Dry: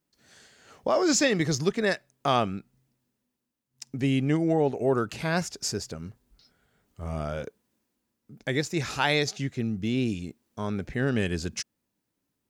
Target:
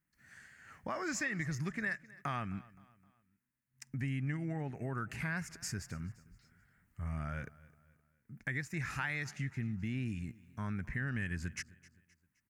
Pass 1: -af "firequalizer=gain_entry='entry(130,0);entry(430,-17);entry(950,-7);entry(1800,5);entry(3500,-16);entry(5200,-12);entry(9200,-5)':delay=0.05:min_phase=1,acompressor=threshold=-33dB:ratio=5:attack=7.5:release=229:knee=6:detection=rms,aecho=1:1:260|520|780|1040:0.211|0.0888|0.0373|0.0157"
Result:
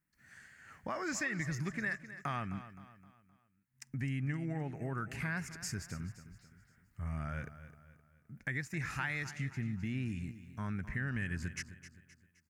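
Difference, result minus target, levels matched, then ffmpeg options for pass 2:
echo-to-direct +7.5 dB
-af "firequalizer=gain_entry='entry(130,0);entry(430,-17);entry(950,-7);entry(1800,5);entry(3500,-16);entry(5200,-12);entry(9200,-5)':delay=0.05:min_phase=1,acompressor=threshold=-33dB:ratio=5:attack=7.5:release=229:knee=6:detection=rms,aecho=1:1:260|520|780:0.0891|0.0374|0.0157"

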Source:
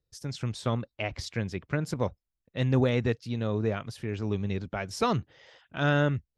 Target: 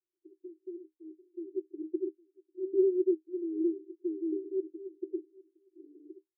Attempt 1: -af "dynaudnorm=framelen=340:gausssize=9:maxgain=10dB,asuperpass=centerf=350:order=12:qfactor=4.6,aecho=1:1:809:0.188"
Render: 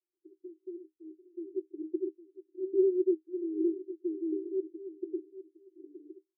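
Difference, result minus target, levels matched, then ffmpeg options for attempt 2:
echo-to-direct +9.5 dB
-af "dynaudnorm=framelen=340:gausssize=9:maxgain=10dB,asuperpass=centerf=350:order=12:qfactor=4.6,aecho=1:1:809:0.0631"

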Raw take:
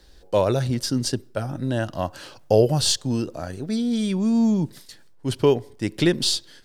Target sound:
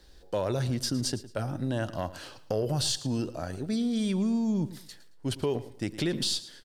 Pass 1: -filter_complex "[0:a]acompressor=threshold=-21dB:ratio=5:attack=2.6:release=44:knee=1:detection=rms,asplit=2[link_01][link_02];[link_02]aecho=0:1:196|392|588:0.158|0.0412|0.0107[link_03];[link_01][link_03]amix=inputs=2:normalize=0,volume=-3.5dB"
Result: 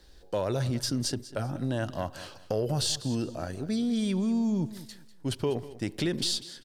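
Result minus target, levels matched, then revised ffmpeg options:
echo 85 ms late
-filter_complex "[0:a]acompressor=threshold=-21dB:ratio=5:attack=2.6:release=44:knee=1:detection=rms,asplit=2[link_01][link_02];[link_02]aecho=0:1:111|222|333:0.158|0.0412|0.0107[link_03];[link_01][link_03]amix=inputs=2:normalize=0,volume=-3.5dB"

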